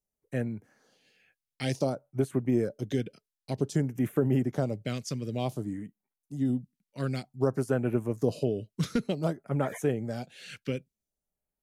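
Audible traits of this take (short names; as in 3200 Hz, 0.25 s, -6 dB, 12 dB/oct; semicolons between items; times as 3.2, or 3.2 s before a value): phasing stages 2, 0.54 Hz, lowest notch 760–4600 Hz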